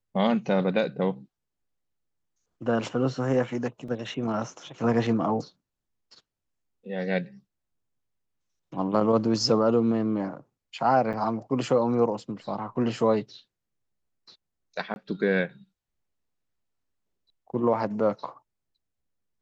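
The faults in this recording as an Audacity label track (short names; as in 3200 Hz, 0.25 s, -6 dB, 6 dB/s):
3.880000	3.880000	gap 4.1 ms
11.130000	11.140000	gap 7.3 ms
14.940000	14.960000	gap 21 ms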